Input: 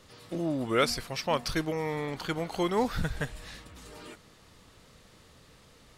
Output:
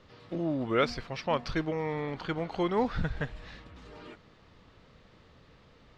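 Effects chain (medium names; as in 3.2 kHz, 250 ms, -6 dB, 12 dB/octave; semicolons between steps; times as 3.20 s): distance through air 200 m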